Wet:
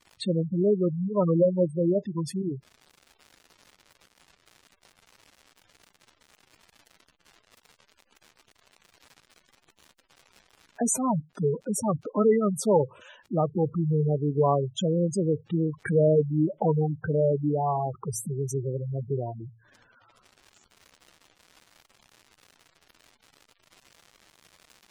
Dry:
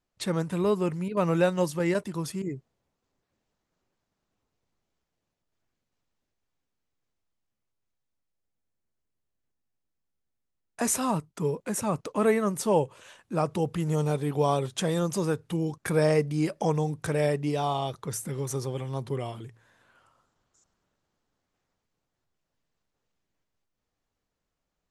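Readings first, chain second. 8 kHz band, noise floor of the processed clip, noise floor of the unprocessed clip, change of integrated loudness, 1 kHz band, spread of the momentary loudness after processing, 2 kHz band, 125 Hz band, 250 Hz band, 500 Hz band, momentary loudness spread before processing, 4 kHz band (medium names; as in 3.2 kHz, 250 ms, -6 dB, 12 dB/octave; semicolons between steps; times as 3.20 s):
0.0 dB, -68 dBFS, -83 dBFS, +2.0 dB, -0.5 dB, 9 LU, -8.0 dB, +2.5 dB, +2.5 dB, +2.5 dB, 9 LU, -3.5 dB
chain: crackle 230 per s -41 dBFS; spectral gate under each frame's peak -10 dB strong; trim +3 dB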